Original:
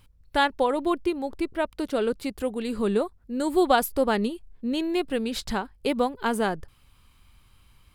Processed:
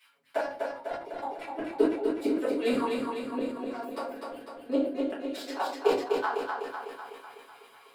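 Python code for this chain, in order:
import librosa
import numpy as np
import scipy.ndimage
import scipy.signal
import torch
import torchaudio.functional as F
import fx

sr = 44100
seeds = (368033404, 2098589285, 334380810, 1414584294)

y = fx.self_delay(x, sr, depth_ms=0.16)
y = scipy.signal.sosfilt(scipy.signal.butter(2, 210.0, 'highpass', fs=sr, output='sos'), y)
y = fx.high_shelf(y, sr, hz=2100.0, db=-6.5)
y = y + 1.0 * np.pad(y, (int(7.2 * sr / 1000.0), 0))[:len(y)]
y = fx.dynamic_eq(y, sr, hz=330.0, q=3.8, threshold_db=-39.0, ratio=4.0, max_db=6)
y = fx.level_steps(y, sr, step_db=23, at=(4.08, 5.6))
y = fx.gate_flip(y, sr, shuts_db=-18.0, range_db=-29)
y = fx.filter_lfo_highpass(y, sr, shape='saw_down', hz=4.4, low_hz=350.0, high_hz=2100.0, q=2.3)
y = fx.echo_feedback(y, sr, ms=250, feedback_pct=58, wet_db=-4.0)
y = fx.room_shoebox(y, sr, seeds[0], volume_m3=35.0, walls='mixed', distance_m=1.5)
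y = fx.sustainer(y, sr, db_per_s=92.0)
y = y * librosa.db_to_amplitude(-4.0)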